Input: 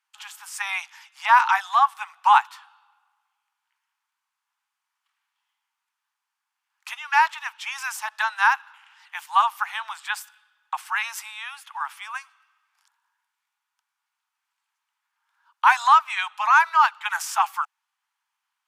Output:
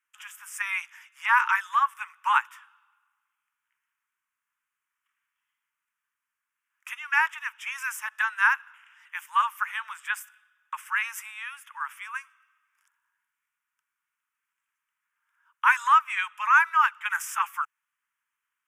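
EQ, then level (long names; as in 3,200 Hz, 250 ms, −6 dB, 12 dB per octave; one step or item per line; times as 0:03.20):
phaser with its sweep stopped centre 1,800 Hz, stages 4
0.0 dB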